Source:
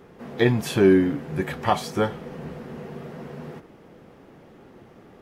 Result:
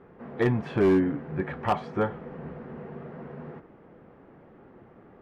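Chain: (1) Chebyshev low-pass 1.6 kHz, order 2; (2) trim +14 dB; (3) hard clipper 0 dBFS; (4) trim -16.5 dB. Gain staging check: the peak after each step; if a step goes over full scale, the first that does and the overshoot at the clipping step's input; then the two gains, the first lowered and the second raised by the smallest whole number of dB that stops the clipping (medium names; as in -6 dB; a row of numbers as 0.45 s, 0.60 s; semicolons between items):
-7.0 dBFS, +7.0 dBFS, 0.0 dBFS, -16.5 dBFS; step 2, 7.0 dB; step 2 +7 dB, step 4 -9.5 dB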